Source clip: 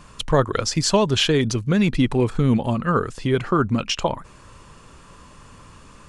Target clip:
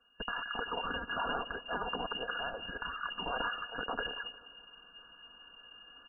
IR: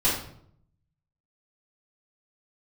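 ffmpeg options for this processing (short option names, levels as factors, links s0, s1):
-filter_complex "[0:a]agate=range=0.0562:threshold=0.0158:ratio=16:detection=peak,afftfilt=real='re*(1-between(b*sr/4096,110,1200))':imag='im*(1-between(b*sr/4096,110,1200))':win_size=4096:overlap=0.75,highpass=f=44:w=0.5412,highpass=f=44:w=1.3066,afftfilt=real='re*lt(hypot(re,im),0.0794)':imag='im*lt(hypot(re,im),0.0794)':win_size=1024:overlap=0.75,lowpass=f=2500:t=q:w=0.5098,lowpass=f=2500:t=q:w=0.6013,lowpass=f=2500:t=q:w=0.9,lowpass=f=2500:t=q:w=2.563,afreqshift=-2900,aecho=1:1:4.2:0.54,areverse,acompressor=mode=upward:threshold=0.00501:ratio=2.5,areverse,lowshelf=f=91:g=7,asplit=2[s0][s1];[s1]adelay=176,lowpass=f=2000:p=1,volume=0.168,asplit=2[s2][s3];[s3]adelay=176,lowpass=f=2000:p=1,volume=0.5,asplit=2[s4][s5];[s5]adelay=176,lowpass=f=2000:p=1,volume=0.5,asplit=2[s6][s7];[s7]adelay=176,lowpass=f=2000:p=1,volume=0.5,asplit=2[s8][s9];[s9]adelay=176,lowpass=f=2000:p=1,volume=0.5[s10];[s0][s2][s4][s6][s8][s10]amix=inputs=6:normalize=0,volume=1.68"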